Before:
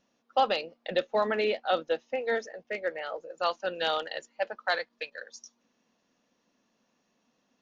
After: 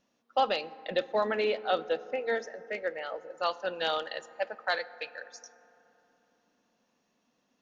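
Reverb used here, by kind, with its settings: FDN reverb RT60 3.4 s, high-frequency decay 0.3×, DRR 16 dB; trim -1.5 dB

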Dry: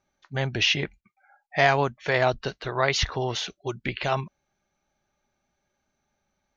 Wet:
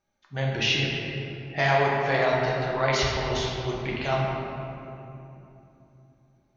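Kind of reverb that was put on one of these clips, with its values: simulated room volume 130 m³, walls hard, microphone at 0.63 m; trim -5 dB

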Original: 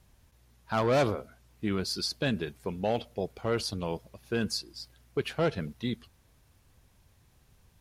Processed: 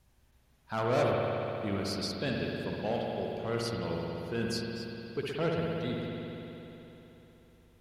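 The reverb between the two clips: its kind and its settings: spring tank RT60 3.5 s, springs 60 ms, chirp 30 ms, DRR -2 dB; trim -5.5 dB

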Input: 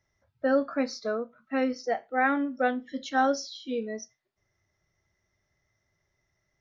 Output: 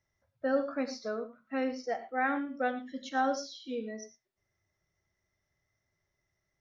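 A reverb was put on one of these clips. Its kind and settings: gated-style reverb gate 130 ms rising, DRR 10.5 dB; trim -5.5 dB

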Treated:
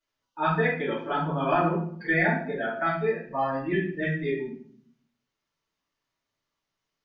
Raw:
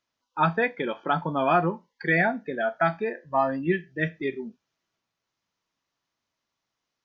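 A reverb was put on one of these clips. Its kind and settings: simulated room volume 72 m³, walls mixed, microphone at 2.6 m; trim -12 dB

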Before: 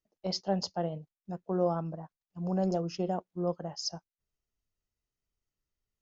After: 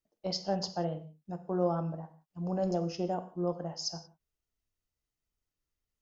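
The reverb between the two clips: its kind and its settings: gated-style reverb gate 200 ms falling, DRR 8.5 dB; trim -1 dB

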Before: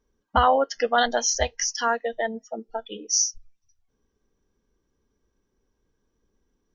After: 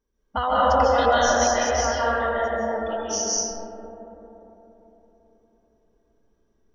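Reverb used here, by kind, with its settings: algorithmic reverb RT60 4 s, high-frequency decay 0.25×, pre-delay 110 ms, DRR -9 dB; trim -6.5 dB

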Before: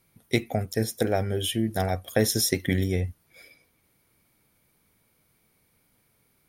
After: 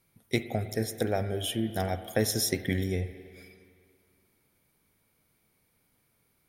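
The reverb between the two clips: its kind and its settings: spring tank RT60 2.2 s, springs 47/57 ms, chirp 55 ms, DRR 11 dB; trim -4 dB

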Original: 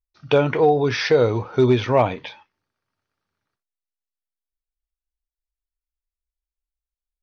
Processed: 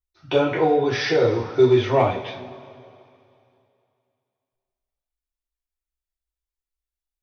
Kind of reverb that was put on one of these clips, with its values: two-slope reverb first 0.36 s, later 2.6 s, from -19 dB, DRR -5 dB; trim -7 dB

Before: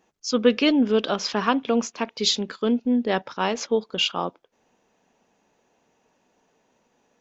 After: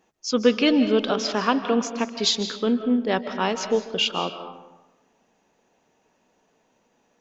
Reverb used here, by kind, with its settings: algorithmic reverb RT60 1.1 s, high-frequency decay 0.6×, pre-delay 115 ms, DRR 9 dB

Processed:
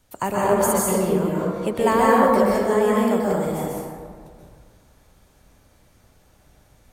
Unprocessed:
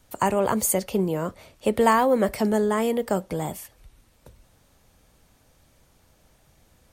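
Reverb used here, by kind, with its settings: plate-style reverb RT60 1.8 s, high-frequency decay 0.4×, pre-delay 115 ms, DRR -5.5 dB; trim -3 dB

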